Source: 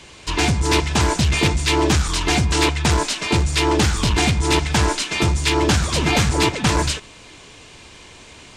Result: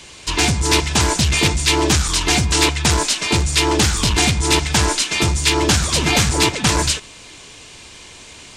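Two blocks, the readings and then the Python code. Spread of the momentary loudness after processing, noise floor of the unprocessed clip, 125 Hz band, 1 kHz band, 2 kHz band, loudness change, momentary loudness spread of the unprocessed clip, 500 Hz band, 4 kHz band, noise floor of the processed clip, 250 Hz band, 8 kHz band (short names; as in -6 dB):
3 LU, -44 dBFS, 0.0 dB, +0.5 dB, +2.5 dB, +2.5 dB, 3 LU, 0.0 dB, +4.5 dB, -40 dBFS, 0.0 dB, +6.5 dB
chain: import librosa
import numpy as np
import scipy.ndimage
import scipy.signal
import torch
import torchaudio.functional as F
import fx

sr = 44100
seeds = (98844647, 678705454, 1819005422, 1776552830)

y = fx.high_shelf(x, sr, hz=3400.0, db=8.0)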